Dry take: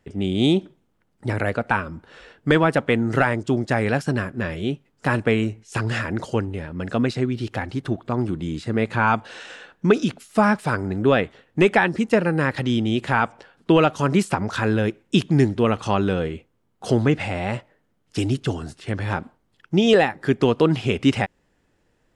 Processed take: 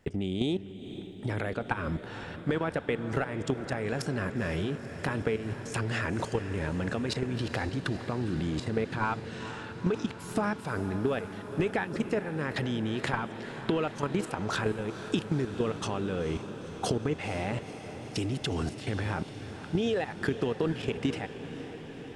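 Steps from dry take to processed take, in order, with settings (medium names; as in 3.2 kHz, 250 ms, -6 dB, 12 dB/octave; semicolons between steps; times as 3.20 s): dynamic bell 440 Hz, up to +6 dB, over -35 dBFS, Q 7.1; level held to a coarse grid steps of 18 dB; peak limiter -15 dBFS, peak gain reduction 9.5 dB; compression 6:1, threshold -35 dBFS, peak gain reduction 15 dB; echo that smears into a reverb 481 ms, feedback 75%, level -12 dB; trim +8 dB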